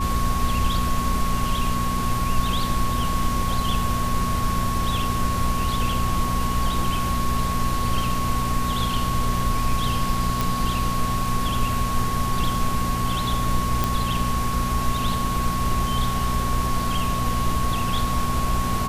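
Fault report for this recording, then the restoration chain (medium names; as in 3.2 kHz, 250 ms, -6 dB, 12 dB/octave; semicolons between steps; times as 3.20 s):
hum 60 Hz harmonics 4 -27 dBFS
whine 1.1 kHz -26 dBFS
10.41 s: pop
13.84 s: pop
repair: de-click; de-hum 60 Hz, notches 4; band-stop 1.1 kHz, Q 30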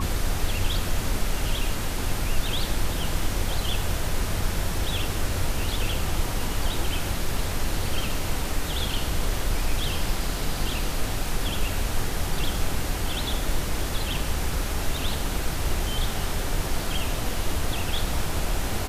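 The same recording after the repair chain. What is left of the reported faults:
nothing left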